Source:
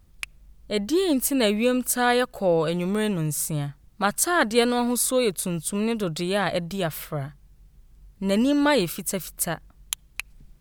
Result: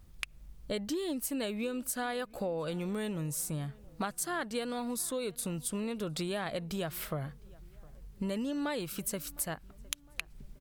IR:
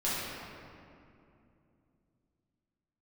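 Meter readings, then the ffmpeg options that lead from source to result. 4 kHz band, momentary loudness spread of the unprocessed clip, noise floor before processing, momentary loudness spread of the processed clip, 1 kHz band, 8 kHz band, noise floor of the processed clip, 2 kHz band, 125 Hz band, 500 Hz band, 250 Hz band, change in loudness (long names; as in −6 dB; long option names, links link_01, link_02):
−11.5 dB, 12 LU, −55 dBFS, 9 LU, −13.0 dB, −10.0 dB, −56 dBFS, −13.0 dB, −9.0 dB, −13.0 dB, −11.5 dB, −12.0 dB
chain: -filter_complex "[0:a]acompressor=threshold=-32dB:ratio=10,asplit=2[link_01][link_02];[link_02]adelay=709,lowpass=frequency=2100:poles=1,volume=-23.5dB,asplit=2[link_03][link_04];[link_04]adelay=709,lowpass=frequency=2100:poles=1,volume=0.51,asplit=2[link_05][link_06];[link_06]adelay=709,lowpass=frequency=2100:poles=1,volume=0.51[link_07];[link_03][link_05][link_07]amix=inputs=3:normalize=0[link_08];[link_01][link_08]amix=inputs=2:normalize=0"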